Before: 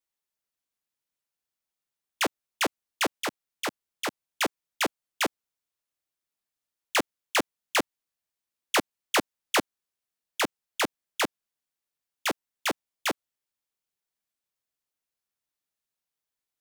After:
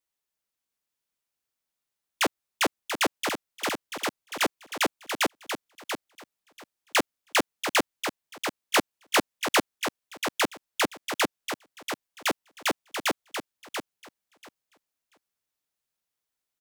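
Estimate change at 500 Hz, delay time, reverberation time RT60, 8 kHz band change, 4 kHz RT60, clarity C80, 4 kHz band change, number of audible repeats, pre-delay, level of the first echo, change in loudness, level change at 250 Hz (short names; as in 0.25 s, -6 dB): +2.0 dB, 0.687 s, none, +2.0 dB, none, none, +2.0 dB, 2, none, -7.5 dB, +1.0 dB, +2.0 dB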